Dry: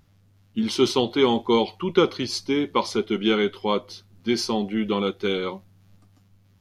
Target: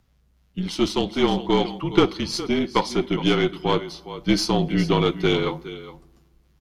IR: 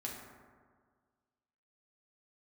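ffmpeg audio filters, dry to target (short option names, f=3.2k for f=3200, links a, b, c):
-filter_complex "[0:a]asplit=2[a][b];[1:a]atrim=start_sample=2205[c];[b][c]afir=irnorm=-1:irlink=0,volume=-18dB[d];[a][d]amix=inputs=2:normalize=0,afreqshift=-37,aecho=1:1:413:0.211,aeval=exprs='0.596*(cos(1*acos(clip(val(0)/0.596,-1,1)))-cos(1*PI/2))+0.0596*(cos(3*acos(clip(val(0)/0.596,-1,1)))-cos(3*PI/2))+0.0299*(cos(6*acos(clip(val(0)/0.596,-1,1)))-cos(6*PI/2))':c=same,dynaudnorm=f=280:g=11:m=11.5dB,volume=-1dB"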